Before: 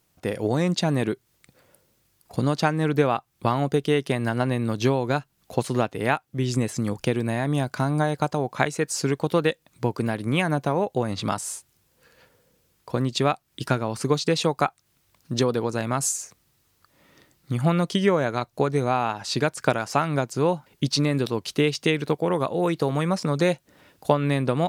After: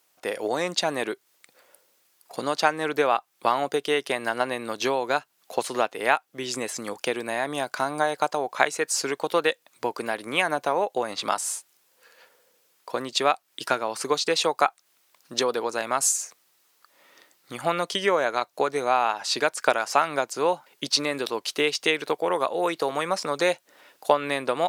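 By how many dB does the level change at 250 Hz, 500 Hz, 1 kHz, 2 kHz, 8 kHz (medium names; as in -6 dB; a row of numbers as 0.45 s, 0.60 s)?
-9.0 dB, -1.0 dB, +2.5 dB, +3.0 dB, +3.0 dB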